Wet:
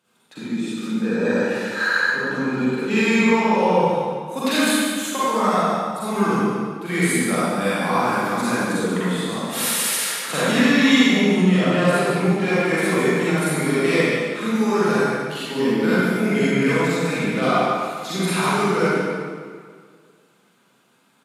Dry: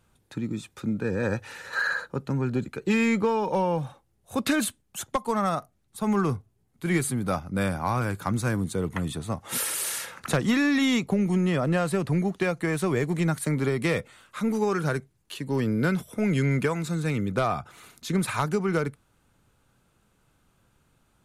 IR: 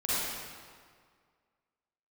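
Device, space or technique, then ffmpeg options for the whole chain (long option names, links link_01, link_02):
PA in a hall: -filter_complex "[0:a]highpass=frequency=180:width=0.5412,highpass=frequency=180:width=1.3066,equalizer=frequency=3300:width_type=o:width=1.6:gain=4.5,aecho=1:1:146:0.355[link_01];[1:a]atrim=start_sample=2205[link_02];[link_01][link_02]afir=irnorm=-1:irlink=0,volume=-2.5dB"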